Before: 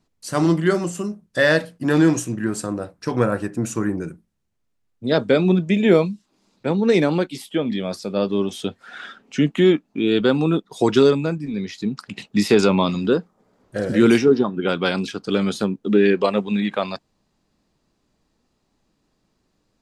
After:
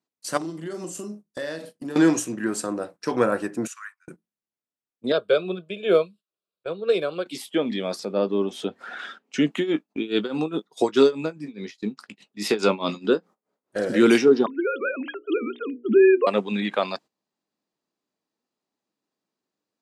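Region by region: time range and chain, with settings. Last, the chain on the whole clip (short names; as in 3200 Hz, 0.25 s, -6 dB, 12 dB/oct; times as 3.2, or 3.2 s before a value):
0.37–1.96 bell 1500 Hz -8.5 dB 2.5 oct + compressor 16:1, threshold -26 dBFS + doubler 43 ms -9 dB
3.67–4.08 steep high-pass 1200 Hz 48 dB/oct + high shelf 3300 Hz -7.5 dB + upward expander, over -57 dBFS
5.12–7.26 fixed phaser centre 1300 Hz, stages 8 + upward expander, over -35 dBFS
7.99–8.99 high shelf 2500 Hz -11 dB + upward compressor, threshold -28 dBFS
9.56–13.77 tremolo 4.8 Hz, depth 89% + doubler 19 ms -14 dB
14.46–16.27 sine-wave speech + notches 60/120/180/240/300/360/420/480/540 Hz
whole clip: HPF 260 Hz 12 dB/oct; gate -42 dBFS, range -14 dB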